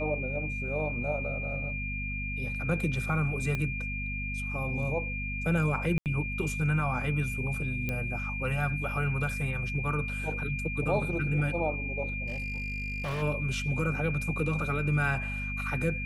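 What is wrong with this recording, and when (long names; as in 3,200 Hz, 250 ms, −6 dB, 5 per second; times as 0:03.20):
mains hum 50 Hz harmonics 5 −36 dBFS
whistle 2,400 Hz −35 dBFS
0:03.55: click −19 dBFS
0:05.98–0:06.06: drop-out 78 ms
0:07.89: click −18 dBFS
0:12.26–0:13.23: clipping −29.5 dBFS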